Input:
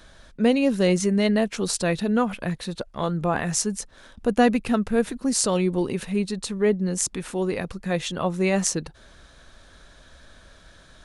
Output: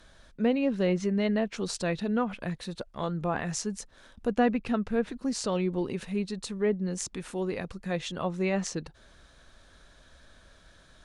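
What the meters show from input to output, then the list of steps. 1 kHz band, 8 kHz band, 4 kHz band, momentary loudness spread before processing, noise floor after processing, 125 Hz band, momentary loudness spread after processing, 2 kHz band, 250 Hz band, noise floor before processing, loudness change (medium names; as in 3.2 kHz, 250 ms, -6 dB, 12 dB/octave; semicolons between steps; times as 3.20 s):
-6.0 dB, -11.5 dB, -8.0 dB, 9 LU, -58 dBFS, -6.0 dB, 9 LU, -6.5 dB, -6.0 dB, -52 dBFS, -6.5 dB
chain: low-pass that closes with the level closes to 2.7 kHz, closed at -15.5 dBFS; trim -6 dB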